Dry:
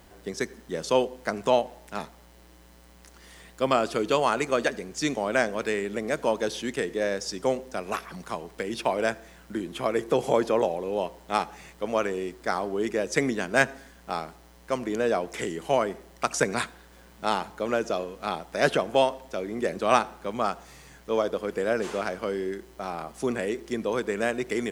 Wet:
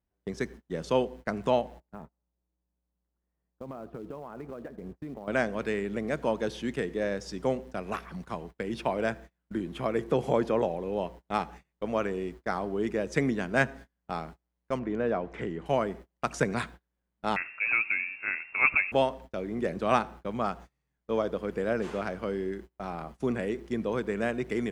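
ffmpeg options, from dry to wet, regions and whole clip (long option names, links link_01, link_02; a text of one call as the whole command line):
ffmpeg -i in.wav -filter_complex "[0:a]asettb=1/sr,asplit=3[link_01][link_02][link_03];[link_01]atrim=end=1.804[link_04];[link_02]atrim=start=1.8:end=5.28,asetpts=PTS-STARTPTS,afade=type=in:duration=0.004:curve=qsin,afade=type=out:start_time=3.476:duration=0.004:curve=qsin,lowpass=1100,acompressor=threshold=-34dB:ratio=8:attack=3.2:release=140:knee=1:detection=peak,acrusher=bits=5:mode=log:mix=0:aa=0.000001[link_05];[link_03]atrim=start=5.276[link_06];[link_04][link_05]acrossfade=duration=0.004:curve1=hsin:curve2=qsin[link_07];[link_07][link_06]acrossfade=duration=0.004:curve1=qsin:curve2=hsin,asettb=1/sr,asplit=3[link_08][link_09][link_10];[link_08]atrim=end=14.794[link_11];[link_09]atrim=start=14.79:end=15.66,asetpts=PTS-STARTPTS,afade=type=in:duration=0.004:curve=qsin,afade=type=out:start_time=0.866:duration=0.004:curve=qsin,lowpass=1800,aemphasis=mode=production:type=75fm[link_12];[link_10]atrim=start=15.656[link_13];[link_11][link_12]acrossfade=duration=0.004:curve1=hsin:curve2=qsin[link_14];[link_14][link_13]acrossfade=duration=0.004:curve1=qsin:curve2=hsin,asettb=1/sr,asplit=3[link_15][link_16][link_17];[link_15]atrim=end=17.364[link_18];[link_16]atrim=start=17.36:end=18.92,asetpts=PTS-STARTPTS,afade=type=in:duration=0.004:curve=qsin,afade=type=out:start_time=1.556:duration=0.004:curve=qsin,lowshelf=frequency=380:gain=10,lowpass=frequency=2400:width_type=q:width=0.5098,lowpass=frequency=2400:width_type=q:width=0.6013,lowpass=frequency=2400:width_type=q:width=0.9,lowpass=frequency=2400:width_type=q:width=2.563,afreqshift=-2800[link_19];[link_17]atrim=start=18.916[link_20];[link_18][link_19]acrossfade=duration=0.004:curve1=hsin:curve2=qsin[link_21];[link_21][link_20]acrossfade=duration=0.004:curve1=qsin:curve2=hsin,agate=range=-32dB:threshold=-41dB:ratio=16:detection=peak,bass=frequency=250:gain=8,treble=frequency=4000:gain=-8,volume=-4dB" out.wav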